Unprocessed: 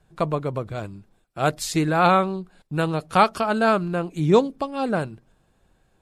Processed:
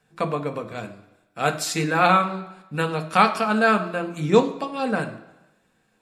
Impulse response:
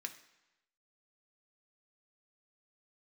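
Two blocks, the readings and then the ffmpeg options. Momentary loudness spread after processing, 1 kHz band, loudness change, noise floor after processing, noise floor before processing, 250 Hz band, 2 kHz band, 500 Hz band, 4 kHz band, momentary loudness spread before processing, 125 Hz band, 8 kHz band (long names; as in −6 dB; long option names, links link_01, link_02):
15 LU, +0.5 dB, 0.0 dB, −66 dBFS, −65 dBFS, −1.0 dB, +4.0 dB, −1.0 dB, +1.5 dB, 13 LU, −3.0 dB, +2.0 dB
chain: -filter_complex "[1:a]atrim=start_sample=2205[link_01];[0:a][link_01]afir=irnorm=-1:irlink=0,volume=4.5dB"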